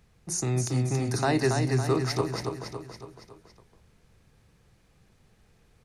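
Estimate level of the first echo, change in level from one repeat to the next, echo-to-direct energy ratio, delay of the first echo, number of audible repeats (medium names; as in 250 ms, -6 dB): -5.0 dB, -5.5 dB, -3.5 dB, 279 ms, 5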